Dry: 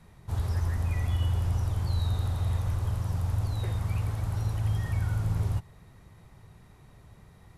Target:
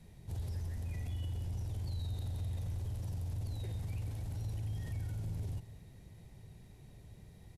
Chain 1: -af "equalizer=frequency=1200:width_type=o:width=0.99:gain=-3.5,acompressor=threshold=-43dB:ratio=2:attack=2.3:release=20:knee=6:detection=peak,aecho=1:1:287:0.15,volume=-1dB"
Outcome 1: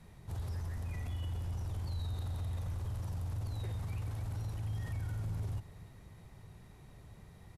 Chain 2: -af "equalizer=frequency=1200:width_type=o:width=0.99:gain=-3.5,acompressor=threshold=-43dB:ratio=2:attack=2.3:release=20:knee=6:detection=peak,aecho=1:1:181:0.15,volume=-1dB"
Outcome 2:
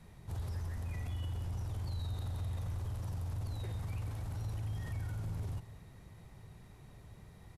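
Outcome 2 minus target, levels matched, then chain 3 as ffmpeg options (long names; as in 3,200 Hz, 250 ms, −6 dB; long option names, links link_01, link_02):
1,000 Hz band +6.0 dB
-af "equalizer=frequency=1200:width_type=o:width=0.99:gain=-15,acompressor=threshold=-43dB:ratio=2:attack=2.3:release=20:knee=6:detection=peak,aecho=1:1:181:0.15,volume=-1dB"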